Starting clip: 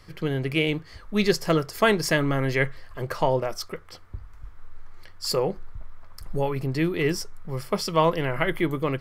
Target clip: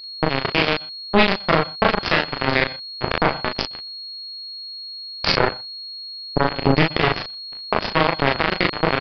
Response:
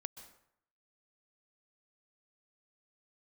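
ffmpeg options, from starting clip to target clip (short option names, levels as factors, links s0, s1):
-filter_complex "[0:a]agate=range=0.1:threshold=0.0224:ratio=16:detection=peak,highshelf=f=4100:g=6,bandreject=f=180.1:t=h:w=4,bandreject=f=360.2:t=h:w=4,bandreject=f=540.3:t=h:w=4,bandreject=f=720.4:t=h:w=4,bandreject=f=900.5:t=h:w=4,bandreject=f=1080.6:t=h:w=4,bandreject=f=1260.7:t=h:w=4,bandreject=f=1440.8:t=h:w=4,bandreject=f=1620.9:t=h:w=4,bandreject=f=1801:t=h:w=4,bandreject=f=1981.1:t=h:w=4,bandreject=f=2161.2:t=h:w=4,bandreject=f=2341.3:t=h:w=4,bandreject=f=2521.4:t=h:w=4,bandreject=f=2701.5:t=h:w=4,bandreject=f=2881.6:t=h:w=4,bandreject=f=3061.7:t=h:w=4,bandreject=f=3241.8:t=h:w=4,bandreject=f=3421.9:t=h:w=4,bandreject=f=3602:t=h:w=4,bandreject=f=3782.1:t=h:w=4,acompressor=threshold=0.0501:ratio=12,flanger=delay=19.5:depth=7.6:speed=0.87,acrusher=bits=3:mix=0:aa=0.5,aeval=exprs='val(0)+0.00126*sin(2*PI*4300*n/s)':c=same,aecho=1:1:26|37:0.15|0.531,asplit=2[s0][s1];[1:a]atrim=start_sample=2205,afade=t=out:st=0.17:d=0.01,atrim=end_sample=7938,lowpass=3200[s2];[s1][s2]afir=irnorm=-1:irlink=0,volume=1.41[s3];[s0][s3]amix=inputs=2:normalize=0,aresample=11025,aresample=44100,alimiter=level_in=16.8:limit=0.891:release=50:level=0:latency=1,volume=0.891"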